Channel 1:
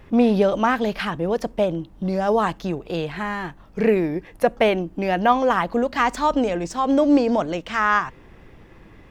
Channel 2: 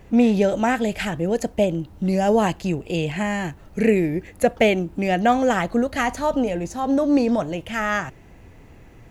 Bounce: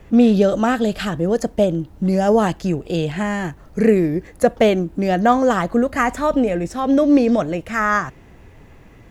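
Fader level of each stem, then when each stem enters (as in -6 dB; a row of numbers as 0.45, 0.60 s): -3.0, 0.0 dB; 0.00, 0.00 s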